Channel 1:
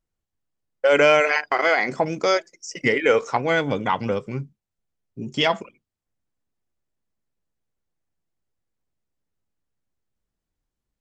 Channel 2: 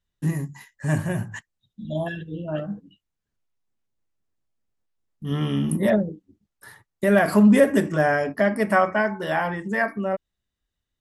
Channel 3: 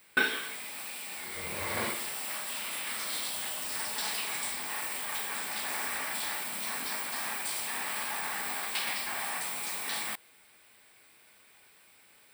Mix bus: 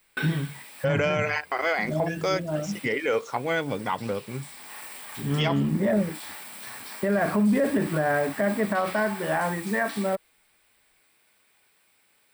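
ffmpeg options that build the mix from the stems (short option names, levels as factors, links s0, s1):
-filter_complex "[0:a]volume=0.531,asplit=2[s0][s1];[1:a]lowpass=2300,volume=0.944[s2];[2:a]volume=0.562[s3];[s1]apad=whole_len=544156[s4];[s3][s4]sidechaincompress=threshold=0.0224:ratio=12:attack=34:release=743[s5];[s0][s2][s5]amix=inputs=3:normalize=0,alimiter=limit=0.168:level=0:latency=1:release=18"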